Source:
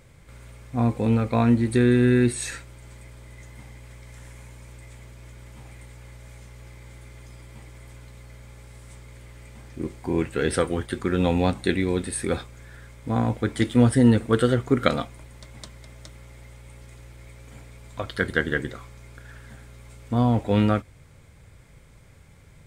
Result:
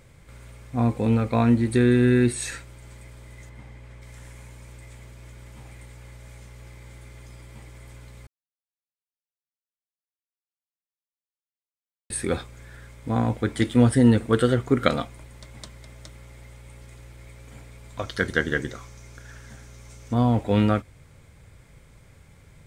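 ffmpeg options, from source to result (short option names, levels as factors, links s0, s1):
-filter_complex "[0:a]asettb=1/sr,asplit=3[s0][s1][s2];[s0]atrim=end=3.494[s3];[s1]atrim=start=3.49:end=4.02,asetpts=PTS-STARTPTS,afade=t=in:d=0.004:c=qsin,afade=t=out:st=0.526:d=0.004:c=qsin,highshelf=f=5100:g=-12[s4];[s2]atrim=start=4.016[s5];[s3][s4]acrossfade=d=0.004:c1=hsin:c2=qsin[s6];[s6][s5]acrossfade=d=0.004:c1=qsin:c2=hsin,asettb=1/sr,asplit=3[s7][s8][s9];[s7]atrim=end=17.994[s10];[s8]atrim=start=17.99:end=20.14,asetpts=PTS-STARTPTS,afade=t=in:d=0.004:c=qsin,afade=t=out:st=2.146:d=0.004:c=qsin,equalizer=f=6000:w=2.9:g=11[s11];[s9]atrim=start=20.136[s12];[s10][s11]acrossfade=d=0.004:c1=hsin:c2=qsin[s13];[s13][s12]acrossfade=d=0.004:c1=qsin:c2=hsin,asplit=3[s14][s15][s16];[s14]atrim=end=8.27,asetpts=PTS-STARTPTS,afade=t=out:st=8.266:d=0.004:c=hsin[s17];[s15]atrim=start=8.27:end=12.1,asetpts=PTS-STARTPTS,volume=0[s18];[s16]atrim=start=12.1,asetpts=PTS-STARTPTS,afade=t=in:d=0.004:c=hsin[s19];[s17][s18][s19]concat=n=3:v=0:a=1"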